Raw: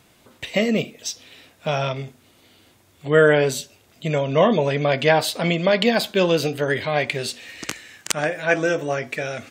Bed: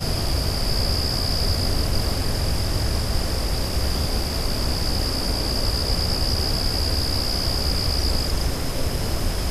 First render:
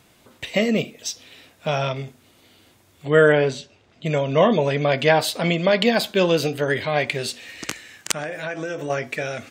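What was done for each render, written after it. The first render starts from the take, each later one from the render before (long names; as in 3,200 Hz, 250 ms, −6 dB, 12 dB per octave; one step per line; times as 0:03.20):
0:03.32–0:04.06: high-frequency loss of the air 130 metres
0:08.13–0:08.90: downward compressor 12 to 1, threshold −24 dBFS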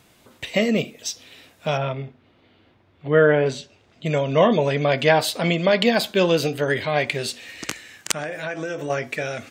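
0:01.77–0:03.46: high-frequency loss of the air 330 metres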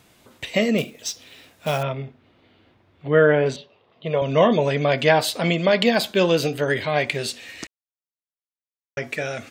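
0:00.78–0:01.83: floating-point word with a short mantissa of 2 bits
0:03.56–0:04.22: loudspeaker in its box 170–3,600 Hz, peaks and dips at 210 Hz −5 dB, 300 Hz −9 dB, 480 Hz +4 dB, 1,100 Hz +7 dB, 1,500 Hz −9 dB, 2,300 Hz −6 dB
0:07.67–0:08.97: silence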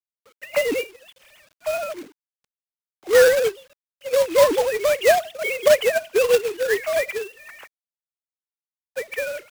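three sine waves on the formant tracks
log-companded quantiser 4 bits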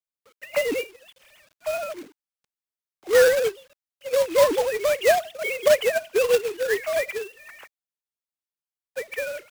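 level −2.5 dB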